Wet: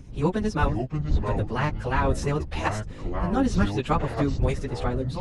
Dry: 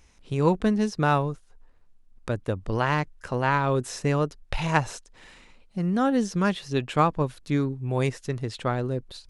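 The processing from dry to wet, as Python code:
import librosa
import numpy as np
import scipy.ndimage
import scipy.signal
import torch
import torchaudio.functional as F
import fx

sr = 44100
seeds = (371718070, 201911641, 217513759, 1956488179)

y = fx.dmg_wind(x, sr, seeds[0], corner_hz=94.0, level_db=-29.0)
y = fx.echo_pitch(y, sr, ms=761, semitones=-6, count=3, db_per_echo=-6.0)
y = fx.stretch_vocoder_free(y, sr, factor=0.56)
y = y * 10.0 ** (2.0 / 20.0)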